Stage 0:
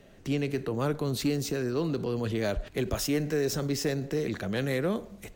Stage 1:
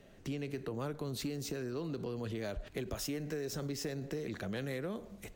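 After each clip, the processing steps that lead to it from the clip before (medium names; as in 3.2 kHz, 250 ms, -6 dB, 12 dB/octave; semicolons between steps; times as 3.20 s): compression, threshold -31 dBFS, peak gain reduction 8 dB; trim -4 dB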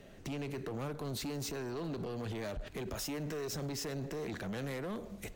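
peak limiter -32.5 dBFS, peak gain reduction 5 dB; hard clipper -39.5 dBFS, distortion -11 dB; trim +4 dB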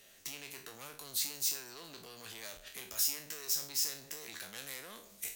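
spectral sustain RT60 0.38 s; pre-emphasis filter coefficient 0.97; trim +8.5 dB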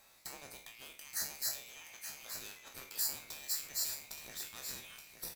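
split-band scrambler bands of 2 kHz; on a send: delay 874 ms -8.5 dB; on the sum: trim -3.5 dB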